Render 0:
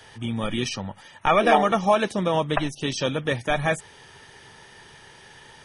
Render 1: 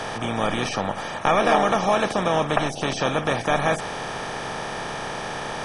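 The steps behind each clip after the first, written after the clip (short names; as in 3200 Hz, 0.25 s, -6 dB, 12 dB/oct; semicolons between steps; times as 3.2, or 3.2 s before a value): per-bin compression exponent 0.4; gain -4.5 dB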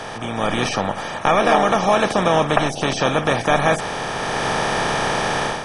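AGC gain up to 11 dB; gain -1 dB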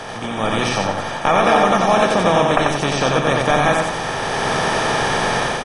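feedback echo 90 ms, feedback 41%, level -3 dB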